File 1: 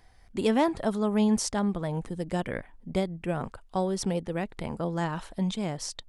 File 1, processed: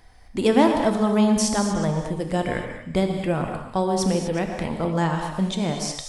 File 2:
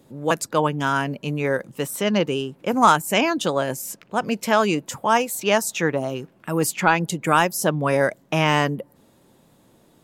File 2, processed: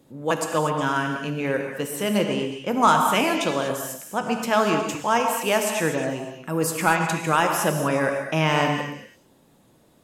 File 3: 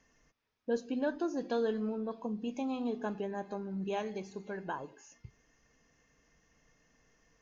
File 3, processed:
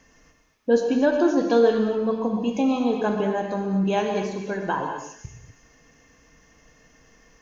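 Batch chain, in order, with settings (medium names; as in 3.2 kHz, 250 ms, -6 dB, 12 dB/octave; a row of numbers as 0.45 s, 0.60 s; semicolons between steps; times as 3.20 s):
repeats whose band climbs or falls 121 ms, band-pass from 850 Hz, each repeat 1.4 oct, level -9.5 dB; gated-style reverb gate 270 ms flat, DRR 3.5 dB; normalise loudness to -23 LUFS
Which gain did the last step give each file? +5.5 dB, -3.0 dB, +11.5 dB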